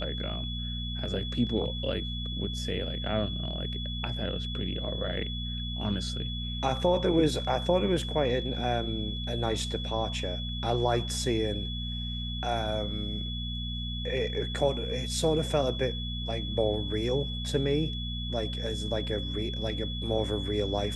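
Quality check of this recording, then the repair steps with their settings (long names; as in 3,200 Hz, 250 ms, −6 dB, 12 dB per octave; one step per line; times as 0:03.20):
mains hum 60 Hz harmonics 4 −35 dBFS
whistle 3,400 Hz −37 dBFS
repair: notch filter 3,400 Hz, Q 30
hum removal 60 Hz, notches 4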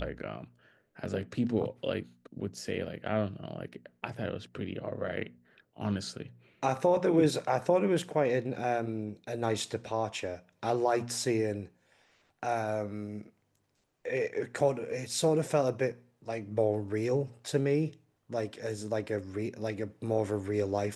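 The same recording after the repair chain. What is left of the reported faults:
none of them is left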